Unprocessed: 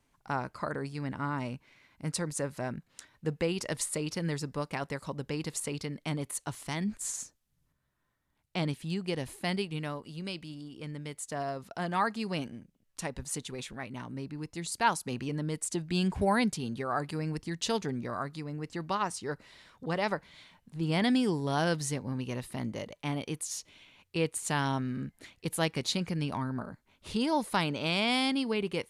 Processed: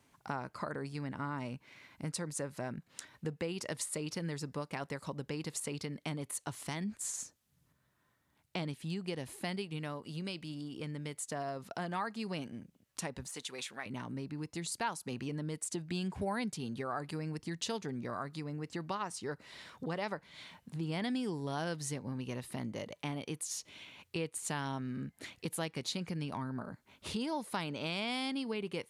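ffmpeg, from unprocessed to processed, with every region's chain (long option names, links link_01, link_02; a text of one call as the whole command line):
ffmpeg -i in.wav -filter_complex "[0:a]asettb=1/sr,asplit=3[link_01][link_02][link_03];[link_01]atrim=end=13.264[link_04];[link_02]atrim=start=13.26:end=13.86,asetpts=PTS-STARTPTS,afade=type=in:duration=0.004:curve=qsin,afade=type=out:start_time=0.596:duration=0.004:curve=qsin,highpass=frequency=1000:poles=1,deesser=0.85[link_05];[link_03]atrim=start=13.856[link_06];[link_04][link_05]acrossfade=duration=0.004:curve1=hsin:curve2=qsin[link_07];[link_07][link_06]acrossfade=duration=0.004:curve1=qsin:curve2=hsin,acompressor=threshold=-45dB:ratio=2.5,highpass=83,volume=5dB" out.wav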